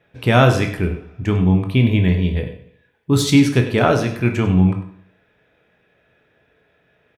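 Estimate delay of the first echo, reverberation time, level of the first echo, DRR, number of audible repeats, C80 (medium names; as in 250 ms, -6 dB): 98 ms, 0.60 s, -13.5 dB, 4.0 dB, 1, 10.5 dB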